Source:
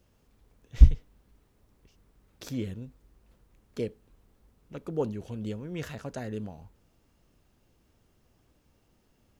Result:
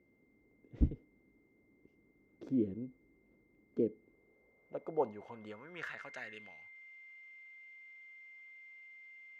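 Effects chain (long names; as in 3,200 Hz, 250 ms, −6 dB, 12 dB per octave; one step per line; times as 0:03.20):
steady tone 2,100 Hz −56 dBFS
band-pass filter sweep 310 Hz → 2,400 Hz, 0:03.94–0:06.37
level +5 dB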